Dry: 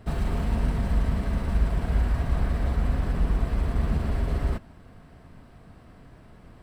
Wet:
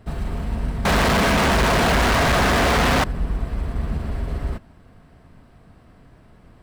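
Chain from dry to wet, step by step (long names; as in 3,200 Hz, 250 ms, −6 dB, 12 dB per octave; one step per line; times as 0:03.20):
0:00.85–0:03.04: mid-hump overdrive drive 51 dB, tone 4,200 Hz, clips at −11 dBFS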